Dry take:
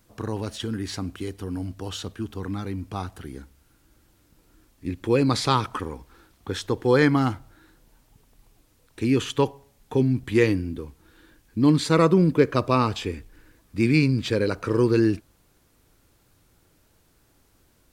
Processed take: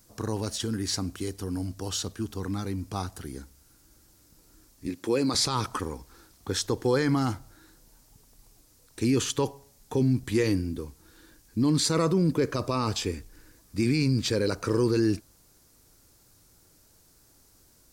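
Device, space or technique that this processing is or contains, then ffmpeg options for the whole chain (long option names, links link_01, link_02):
over-bright horn tweeter: -filter_complex "[0:a]highshelf=frequency=4000:width_type=q:width=1.5:gain=7,alimiter=limit=-14.5dB:level=0:latency=1:release=13,asettb=1/sr,asplit=3[link_01][link_02][link_03];[link_01]atrim=end=4.874[link_04];[link_02]atrim=start=4.87:end=5.35,asetpts=PTS-STARTPTS,afade=type=in:duration=0.004:curve=qsin,afade=type=out:start_time=0.476:duration=0.004:curve=qsin,highpass=200[link_05];[link_03]atrim=start=5.346[link_06];[link_04][link_05]acrossfade=duration=0.004:curve1=hsin:curve2=qsin[link_07];[link_07][link_06]acrossfade=duration=0.004:curve1=qsin:curve2=hsin,volume=-1dB"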